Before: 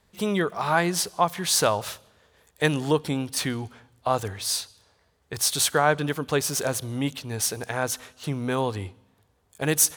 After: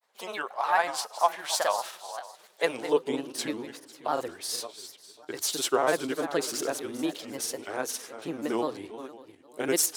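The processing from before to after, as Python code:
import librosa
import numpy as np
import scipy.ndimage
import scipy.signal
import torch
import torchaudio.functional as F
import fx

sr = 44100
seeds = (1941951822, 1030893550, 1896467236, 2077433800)

y = fx.reverse_delay_fb(x, sr, ms=275, feedback_pct=45, wet_db=-12.0)
y = fx.granulator(y, sr, seeds[0], grain_ms=100.0, per_s=20.0, spray_ms=27.0, spread_st=3)
y = fx.filter_sweep_highpass(y, sr, from_hz=730.0, to_hz=320.0, start_s=2.29, end_s=3.17, q=1.8)
y = y * 10.0 ** (-4.5 / 20.0)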